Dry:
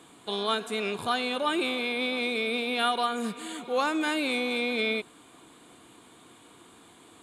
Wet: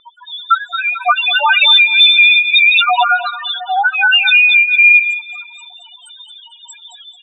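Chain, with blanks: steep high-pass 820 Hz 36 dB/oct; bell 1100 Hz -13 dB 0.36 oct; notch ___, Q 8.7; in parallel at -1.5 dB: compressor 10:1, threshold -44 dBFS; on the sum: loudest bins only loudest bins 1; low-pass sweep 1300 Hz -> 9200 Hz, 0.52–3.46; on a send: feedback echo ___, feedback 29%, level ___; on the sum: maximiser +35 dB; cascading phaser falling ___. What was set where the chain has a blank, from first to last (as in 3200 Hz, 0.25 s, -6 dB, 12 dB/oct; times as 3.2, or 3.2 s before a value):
2200 Hz, 0.22 s, -11.5 dB, 1.8 Hz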